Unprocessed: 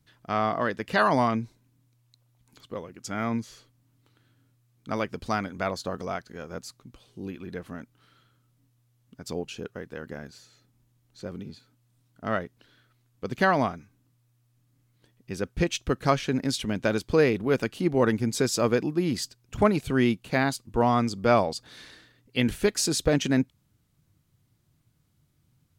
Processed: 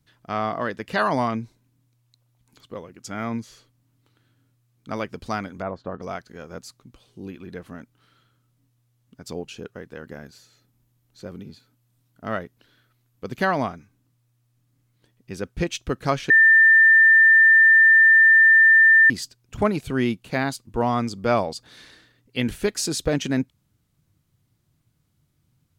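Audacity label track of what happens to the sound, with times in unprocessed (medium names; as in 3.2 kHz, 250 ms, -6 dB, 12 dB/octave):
5.610000	6.010000	low-pass 1.1 kHz -> 2.1 kHz
10.100000	13.490000	peaking EQ 13 kHz +7 dB 0.31 oct
16.300000	19.100000	bleep 1.79 kHz -10 dBFS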